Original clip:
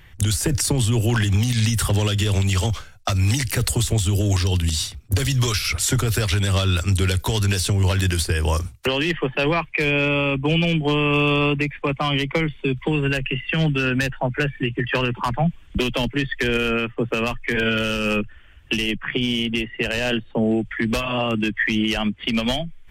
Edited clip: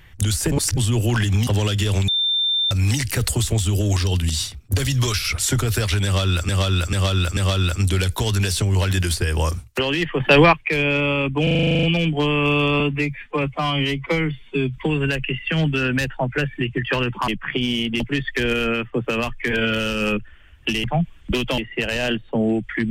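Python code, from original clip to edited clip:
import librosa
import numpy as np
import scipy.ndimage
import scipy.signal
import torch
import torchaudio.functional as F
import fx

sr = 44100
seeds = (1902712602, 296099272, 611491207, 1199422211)

y = fx.edit(x, sr, fx.reverse_span(start_s=0.52, length_s=0.25),
    fx.cut(start_s=1.47, length_s=0.4),
    fx.bleep(start_s=2.48, length_s=0.63, hz=3580.0, db=-17.0),
    fx.repeat(start_s=6.45, length_s=0.44, count=4),
    fx.clip_gain(start_s=9.28, length_s=0.33, db=8.0),
    fx.stutter(start_s=10.51, slice_s=0.04, count=11),
    fx.stretch_span(start_s=11.48, length_s=1.32, factor=1.5),
    fx.swap(start_s=15.3, length_s=0.74, other_s=18.88, other_length_s=0.72), tone=tone)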